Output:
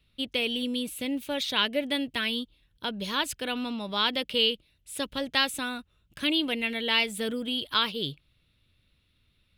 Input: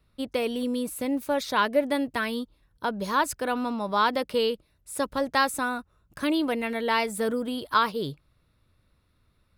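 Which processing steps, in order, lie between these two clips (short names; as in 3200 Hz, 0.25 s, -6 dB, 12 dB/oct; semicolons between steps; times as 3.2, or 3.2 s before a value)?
EQ curve 240 Hz 0 dB, 1100 Hz -7 dB, 1900 Hz +2 dB, 3100 Hz +14 dB, 4900 Hz +2 dB, 10000 Hz 0 dB; gain -2.5 dB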